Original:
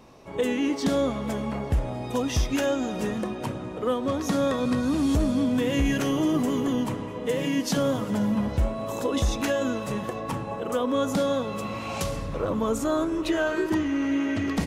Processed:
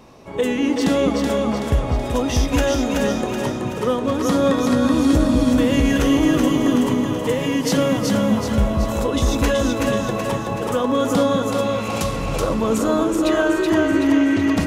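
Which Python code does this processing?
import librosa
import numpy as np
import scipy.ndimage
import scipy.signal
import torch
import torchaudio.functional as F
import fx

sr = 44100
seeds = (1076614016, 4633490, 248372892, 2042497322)

y = fx.echo_split(x, sr, split_hz=390.0, low_ms=190, high_ms=377, feedback_pct=52, wet_db=-3)
y = y * 10.0 ** (5.0 / 20.0)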